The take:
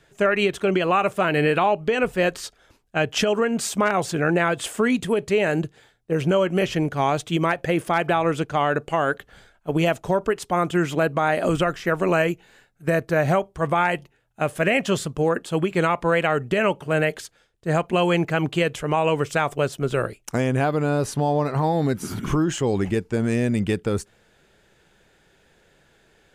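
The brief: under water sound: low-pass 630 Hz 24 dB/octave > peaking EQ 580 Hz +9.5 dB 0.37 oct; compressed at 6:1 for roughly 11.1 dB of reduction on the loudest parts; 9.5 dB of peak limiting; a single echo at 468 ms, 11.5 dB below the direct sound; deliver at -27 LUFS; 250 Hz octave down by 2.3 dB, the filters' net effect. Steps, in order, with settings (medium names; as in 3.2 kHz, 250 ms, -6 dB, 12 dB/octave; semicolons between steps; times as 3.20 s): peaking EQ 250 Hz -4 dB; compression 6:1, threshold -29 dBFS; peak limiter -23.5 dBFS; low-pass 630 Hz 24 dB/octave; peaking EQ 580 Hz +9.5 dB 0.37 oct; delay 468 ms -11.5 dB; trim +6.5 dB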